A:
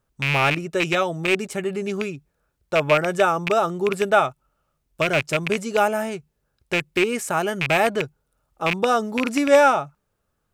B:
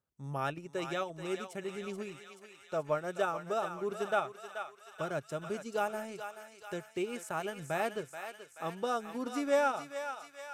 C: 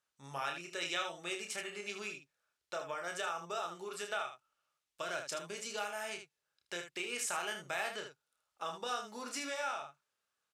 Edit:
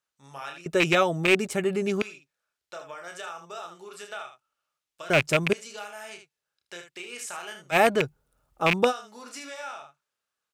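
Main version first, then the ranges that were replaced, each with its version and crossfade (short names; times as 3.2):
C
0.66–2.02 from A
5.1–5.53 from A
7.74–8.9 from A, crossfade 0.06 s
not used: B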